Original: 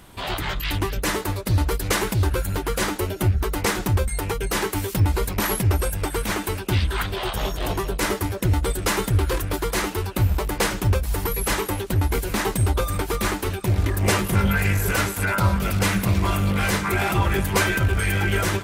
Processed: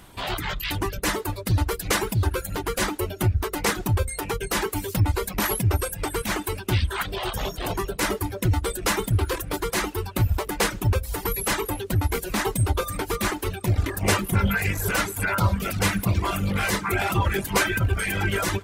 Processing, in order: de-hum 47.65 Hz, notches 13; reverb removal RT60 0.86 s

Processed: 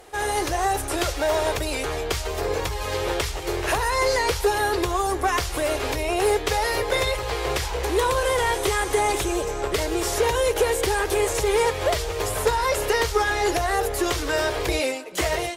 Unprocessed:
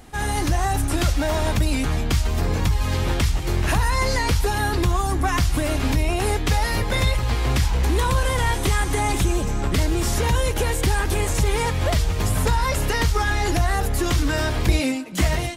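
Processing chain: resonant low shelf 310 Hz -10.5 dB, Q 3; one-sided clip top -14 dBFS

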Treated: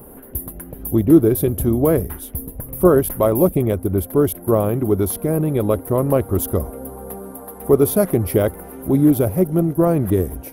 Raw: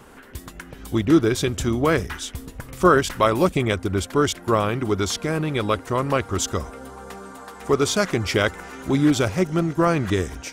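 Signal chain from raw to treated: FFT filter 630 Hz 0 dB, 1.4 kHz -15 dB, 7.4 kHz -22 dB, 11 kHz +14 dB; in parallel at +3 dB: gain riding within 5 dB 2 s; on the sum: trim -3.5 dB

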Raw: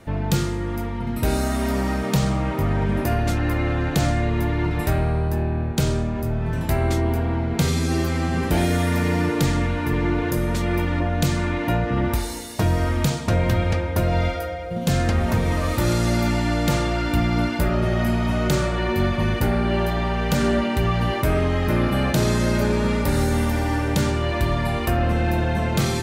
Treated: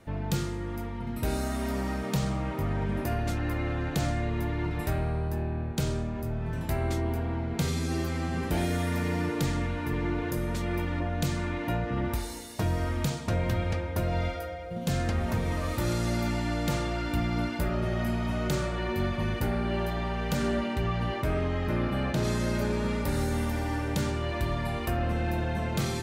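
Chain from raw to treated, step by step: 20.73–22.23 s: treble shelf 10 kHz -> 6.3 kHz -10.5 dB; trim -8 dB

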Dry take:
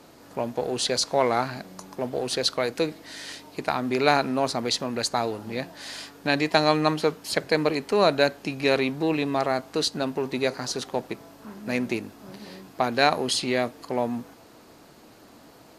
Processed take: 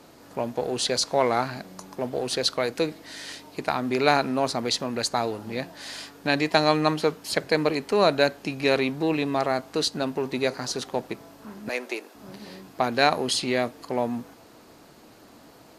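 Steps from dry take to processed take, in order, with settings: 11.69–12.15 s: high-pass 390 Hz 24 dB/octave

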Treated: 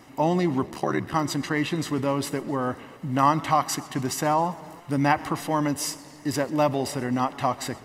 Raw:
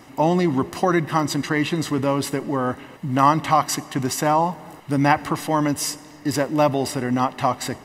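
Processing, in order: 0.65–1.14 s: ring modulator 36 Hz; modulated delay 132 ms, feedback 66%, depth 213 cents, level -22 dB; trim -4 dB

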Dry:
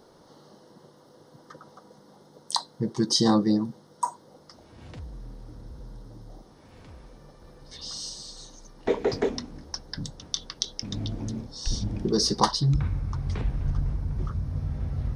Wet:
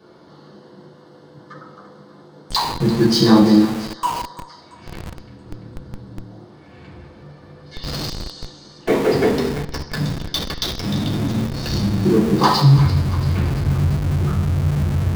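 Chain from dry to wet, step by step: 11.87–12.35 s: low-pass 2.2 kHz -> 1.2 kHz 24 dB/octave; thinning echo 340 ms, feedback 56%, high-pass 980 Hz, level -12.5 dB; reverberation RT60 0.85 s, pre-delay 3 ms, DRR -6.5 dB; in parallel at -5.5 dB: Schmitt trigger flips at -20 dBFS; 3.65–5.46 s: on the sum: bass shelf 390 Hz -6 dB; trim -7.5 dB

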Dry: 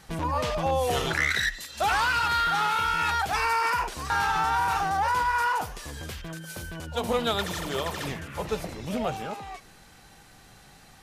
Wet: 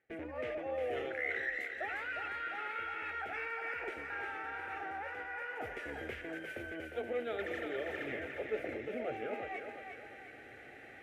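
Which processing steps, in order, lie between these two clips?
FFT filter 1.3 kHz 0 dB, 2.1 kHz +5 dB, 4.4 kHz -26 dB; reverse; compression 6:1, threshold -38 dBFS, peak gain reduction 19 dB; reverse; high-pass 160 Hz 12 dB/octave; static phaser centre 420 Hz, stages 4; on a send: thinning echo 355 ms, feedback 45%, high-pass 360 Hz, level -5.5 dB; on the sum: gate with hold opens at -52 dBFS; trim +5.5 dB

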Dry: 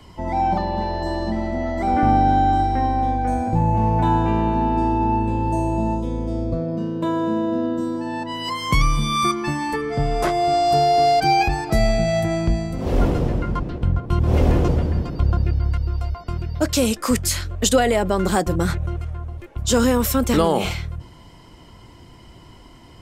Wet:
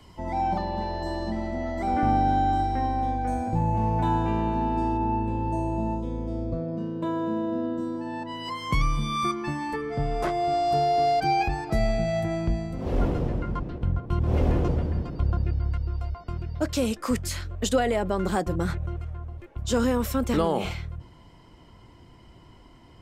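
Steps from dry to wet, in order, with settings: treble shelf 4.3 kHz +2 dB, from 4.97 s -7.5 dB; trim -6 dB

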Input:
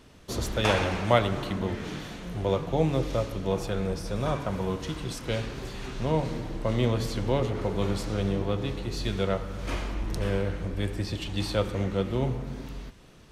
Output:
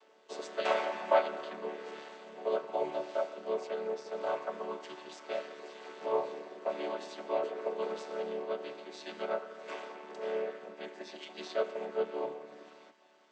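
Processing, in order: vocoder on a held chord major triad, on D3; high-pass 460 Hz 24 dB/octave; trim +2 dB

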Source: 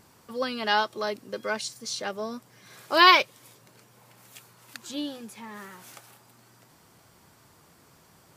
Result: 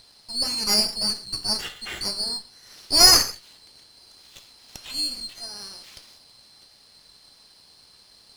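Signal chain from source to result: split-band scrambler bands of 4 kHz; peaking EQ 3.7 kHz +14.5 dB 2.1 oct; gated-style reverb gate 190 ms falling, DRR 7 dB; sliding maximum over 3 samples; trim -8 dB

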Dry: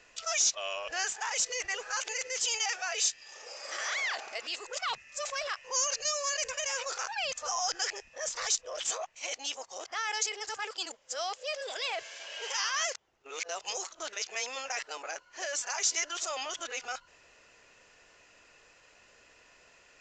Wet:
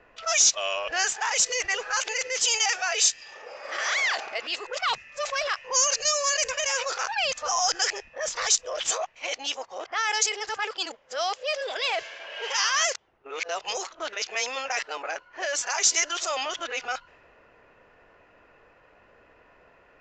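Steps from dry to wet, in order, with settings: level-controlled noise filter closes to 1.3 kHz, open at -27 dBFS; trim +7.5 dB

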